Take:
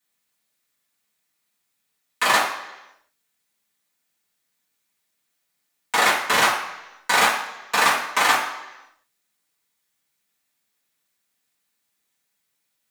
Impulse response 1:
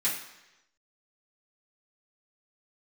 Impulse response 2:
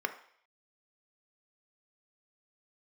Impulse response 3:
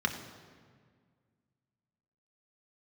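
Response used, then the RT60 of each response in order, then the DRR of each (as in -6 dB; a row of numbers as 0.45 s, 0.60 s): 1; 1.0 s, 0.60 s, 1.8 s; -9.5 dB, 7.0 dB, 3.5 dB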